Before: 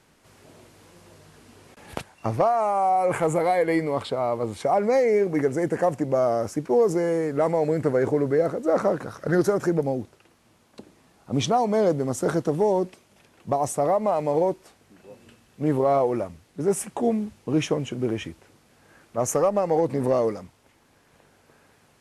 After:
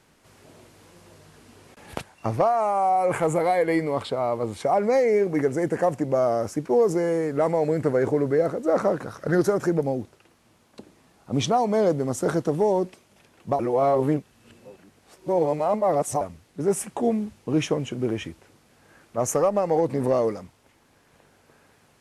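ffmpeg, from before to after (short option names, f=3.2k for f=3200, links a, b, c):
-filter_complex "[0:a]asplit=3[a][b][c];[a]atrim=end=13.592[d];[b]atrim=start=13.588:end=16.212,asetpts=PTS-STARTPTS,areverse[e];[c]atrim=start=16.208[f];[d][e]acrossfade=d=0.004:c1=hsin:c2=hsin[g];[g][f]acrossfade=d=0.004:c1=hsin:c2=hsin"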